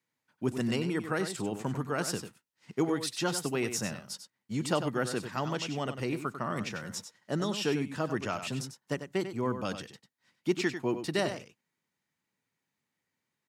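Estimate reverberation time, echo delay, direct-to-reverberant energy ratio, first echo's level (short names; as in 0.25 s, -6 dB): none, 96 ms, none, -9.5 dB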